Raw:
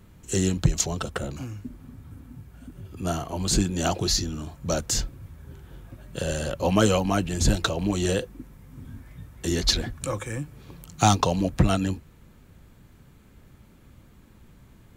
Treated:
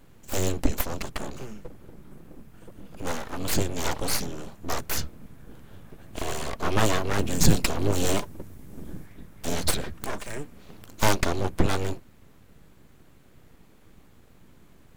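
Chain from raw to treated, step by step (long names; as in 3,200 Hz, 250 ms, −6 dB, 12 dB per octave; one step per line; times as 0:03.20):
0:07.19–0:09.06: bass and treble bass +6 dB, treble +6 dB
full-wave rectification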